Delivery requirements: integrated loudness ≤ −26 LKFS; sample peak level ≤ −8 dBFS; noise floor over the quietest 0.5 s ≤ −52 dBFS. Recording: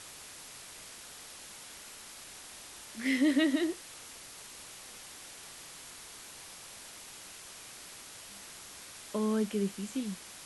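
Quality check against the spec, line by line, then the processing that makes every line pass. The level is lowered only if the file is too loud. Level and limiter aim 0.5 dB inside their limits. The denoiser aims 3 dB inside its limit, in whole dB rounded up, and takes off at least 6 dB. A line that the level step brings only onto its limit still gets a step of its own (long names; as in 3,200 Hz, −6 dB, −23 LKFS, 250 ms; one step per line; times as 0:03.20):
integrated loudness −37.5 LKFS: in spec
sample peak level −17.5 dBFS: in spec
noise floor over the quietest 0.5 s −49 dBFS: out of spec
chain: broadband denoise 6 dB, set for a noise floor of −49 dBFS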